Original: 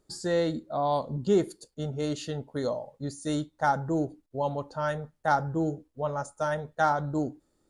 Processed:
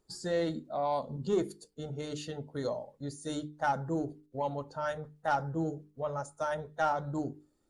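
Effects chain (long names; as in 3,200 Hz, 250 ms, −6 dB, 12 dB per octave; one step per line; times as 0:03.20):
spectral magnitudes quantised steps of 15 dB
soft clipping −14.5 dBFS, distortion −23 dB
mains-hum notches 50/100/150/200/250/300/350/400/450 Hz
level −3.5 dB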